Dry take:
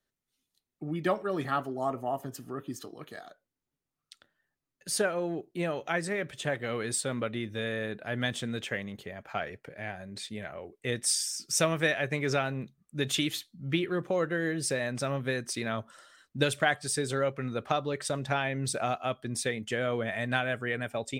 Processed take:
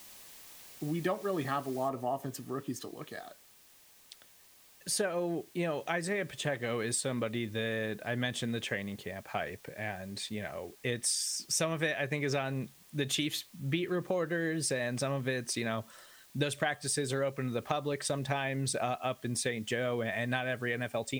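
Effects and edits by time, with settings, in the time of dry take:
1.89 noise floor step -53 dB -61 dB
whole clip: notch 1400 Hz, Q 10; compressor 3:1, threshold -30 dBFS; gain +1 dB

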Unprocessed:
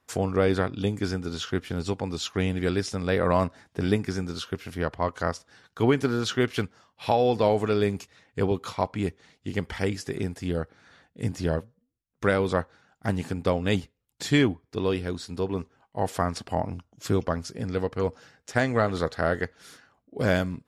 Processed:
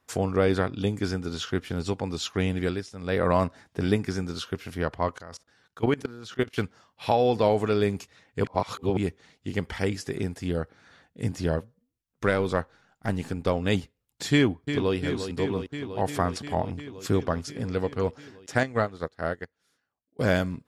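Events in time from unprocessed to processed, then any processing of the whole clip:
2.62–3.2 dip -11.5 dB, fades 0.25 s
5.18–6.58 level quantiser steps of 21 dB
8.44–8.97 reverse
12.26–13.57 half-wave gain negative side -3 dB
14.32–14.96 echo throw 0.35 s, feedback 80%, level -9 dB
18.63–20.19 upward expander 2.5:1, over -35 dBFS

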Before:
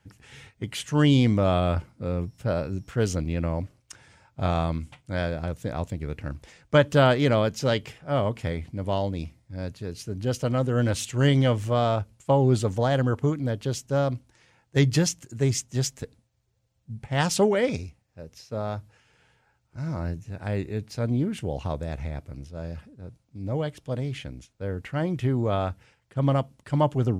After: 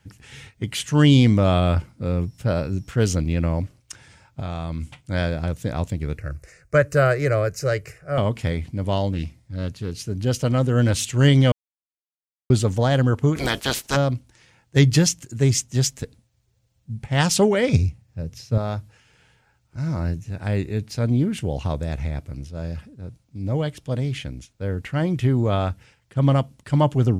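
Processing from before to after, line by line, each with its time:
4.4–4.82 level quantiser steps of 11 dB
6.18–8.18 fixed phaser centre 900 Hz, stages 6
9.12–10.05 Doppler distortion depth 0.26 ms
11.52–12.5 mute
13.35–13.95 spectral limiter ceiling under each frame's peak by 29 dB
17.73–18.58 bell 110 Hz +12 dB 1.8 oct
whole clip: bell 710 Hz -4.5 dB 2.7 oct; gain +6.5 dB

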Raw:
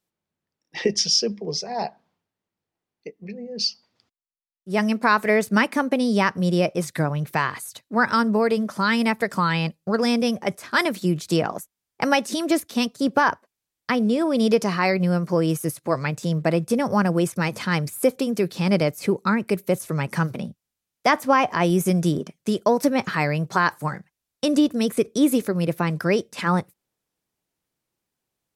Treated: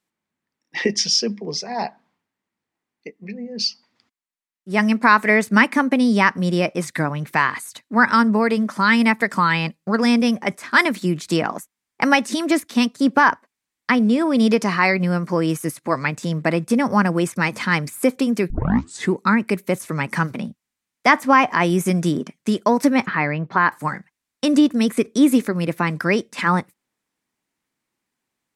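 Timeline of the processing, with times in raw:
18.5 tape start 0.64 s
23.06–23.72 air absorption 310 m
whole clip: graphic EQ 250/1000/2000/4000/8000 Hz +10/+7/+10/+3/+6 dB; gain -4.5 dB

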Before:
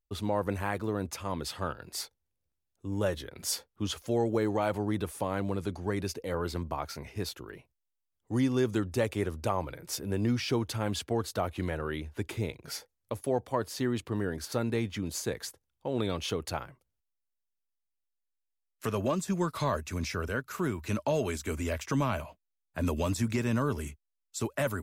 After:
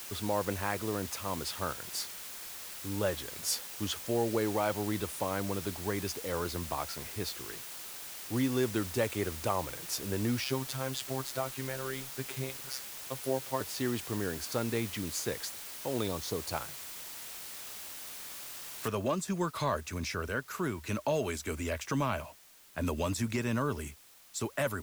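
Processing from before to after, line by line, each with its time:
10.44–13.61 robotiser 132 Hz
16.08–16.52 Chebyshev band-stop 1100–4000 Hz, order 3
18.88 noise floor step -44 dB -58 dB
whole clip: low shelf 440 Hz -4 dB

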